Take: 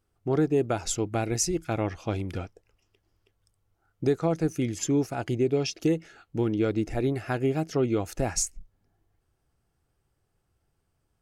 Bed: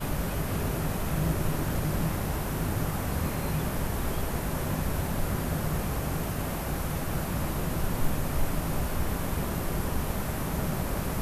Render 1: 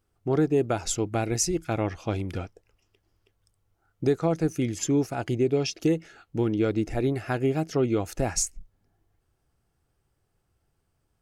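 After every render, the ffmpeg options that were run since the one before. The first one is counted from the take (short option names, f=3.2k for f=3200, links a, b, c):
-af "volume=1dB"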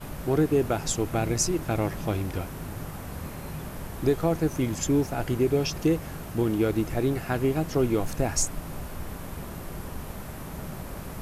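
-filter_complex "[1:a]volume=-7dB[a];[0:a][a]amix=inputs=2:normalize=0"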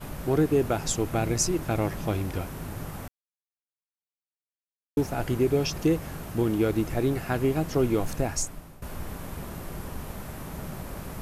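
-filter_complex "[0:a]asplit=4[a][b][c][d];[a]atrim=end=3.08,asetpts=PTS-STARTPTS,afade=t=out:st=3.076:d=0.004:c=hsin[e];[b]atrim=start=3.08:end=4.97,asetpts=PTS-STARTPTS,volume=0[f];[c]atrim=start=4.97:end=8.82,asetpts=PTS-STARTPTS,afade=t=in:d=0.004:c=hsin,afade=t=out:st=3.15:d=0.7:silence=0.141254[g];[d]atrim=start=8.82,asetpts=PTS-STARTPTS,afade=t=in:d=0.004:c=hsin:silence=0.141254[h];[e][f][g][h]concat=n=4:v=0:a=1"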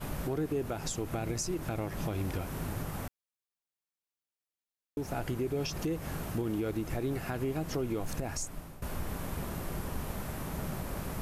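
-af "acompressor=threshold=-27dB:ratio=2,alimiter=level_in=0.5dB:limit=-24dB:level=0:latency=1:release=176,volume=-0.5dB"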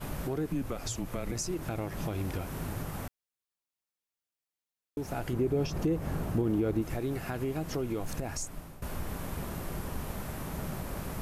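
-filter_complex "[0:a]asettb=1/sr,asplit=3[a][b][c];[a]atrim=end=0.474[d];[b]atrim=start=0.47:end=1.32,asetpts=PTS-STARTPTS,afade=t=in:d=0.004:c=qsin,afade=t=out:st=0.846:d=0.004:c=qsin,afreqshift=-130[e];[c]atrim=start=1.316[f];[d][e]acrossfade=d=0.004:c1=hsin:c2=qsin[g];[g][f]acrossfade=d=0.004:c1=qsin:c2=hsin,asettb=1/sr,asplit=3[h][i][j];[h]atrim=end=5.334[k];[i]atrim=start=5.33:end=6.82,asetpts=PTS-STARTPTS,afade=t=in:d=0.004:c=qsin,afade=t=out:st=1.486:d=0.004:c=qsin,tiltshelf=f=1.3k:g=5[l];[j]atrim=start=6.816[m];[k][l]acrossfade=d=0.004:c1=hsin:c2=qsin[n];[n][m]acrossfade=d=0.004:c1=qsin:c2=hsin"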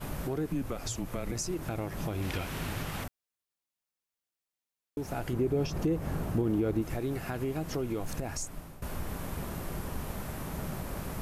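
-filter_complex "[0:a]asettb=1/sr,asplit=3[a][b][c];[a]atrim=end=2.224[d];[b]atrim=start=2.22:end=3.04,asetpts=PTS-STARTPTS,afade=t=in:d=0.004:c=qsin,afade=t=out:st=0.816:d=0.004:c=qsin,equalizer=f=3k:t=o:w=2:g=10[e];[c]atrim=start=3.036[f];[d][e]acrossfade=d=0.004:c1=hsin:c2=qsin[g];[g][f]acrossfade=d=0.004:c1=qsin:c2=hsin"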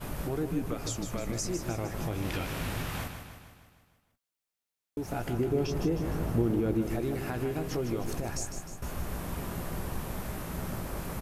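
-filter_complex "[0:a]asplit=2[a][b];[b]adelay=17,volume=-11dB[c];[a][c]amix=inputs=2:normalize=0,aecho=1:1:154|308|462|616|770|924|1078:0.398|0.227|0.129|0.0737|0.042|0.024|0.0137"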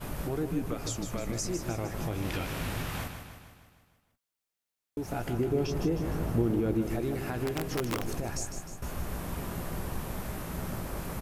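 -filter_complex "[0:a]asettb=1/sr,asplit=3[a][b][c];[a]atrim=end=7.464[d];[b]atrim=start=7.46:end=8.11,asetpts=PTS-STARTPTS,afade=t=in:d=0.004:c=qsin,afade=t=out:st=0.646:d=0.004:c=qsin,aeval=exprs='(mod(15.8*val(0)+1,2)-1)/15.8':c=same[e];[c]atrim=start=8.106[f];[d][e]acrossfade=d=0.004:c1=hsin:c2=qsin[g];[g][f]acrossfade=d=0.004:c1=qsin:c2=hsin"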